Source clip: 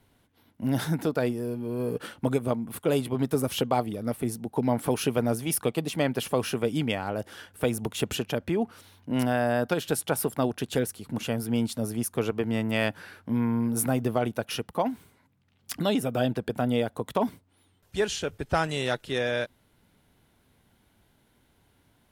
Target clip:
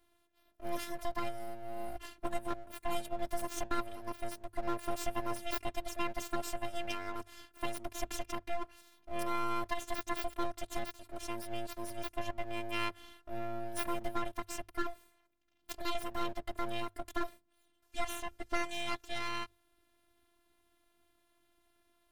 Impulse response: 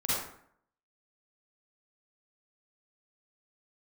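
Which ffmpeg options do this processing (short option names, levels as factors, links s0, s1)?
-af "afftfilt=real='hypot(re,im)*cos(PI*b)':imag='0':win_size=512:overlap=0.75,aeval=exprs='abs(val(0))':c=same,bandreject=f=50:t=h:w=6,bandreject=f=100:t=h:w=6,volume=0.668"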